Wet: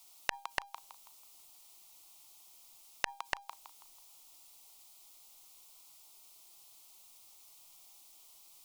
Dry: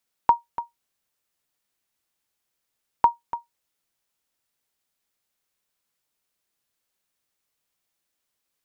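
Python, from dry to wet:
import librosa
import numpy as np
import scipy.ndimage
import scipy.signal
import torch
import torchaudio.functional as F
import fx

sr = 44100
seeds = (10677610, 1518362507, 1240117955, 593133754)

p1 = fx.peak_eq(x, sr, hz=150.0, db=-11.0, octaves=2.8)
p2 = fx.over_compress(p1, sr, threshold_db=-24.0, ratio=-0.5)
p3 = p1 + (p2 * 10.0 ** (1.5 / 20.0))
p4 = fx.fixed_phaser(p3, sr, hz=330.0, stages=8)
p5 = fx.gate_flip(p4, sr, shuts_db=-27.0, range_db=-35)
p6 = fx.comb_fb(p5, sr, f0_hz=800.0, decay_s=0.35, harmonics='all', damping=0.0, mix_pct=50)
p7 = p6 + fx.echo_wet_highpass(p6, sr, ms=163, feedback_pct=37, hz=1600.0, wet_db=-10, dry=0)
p8 = fx.transformer_sat(p7, sr, knee_hz=3600.0)
y = p8 * 10.0 ** (17.5 / 20.0)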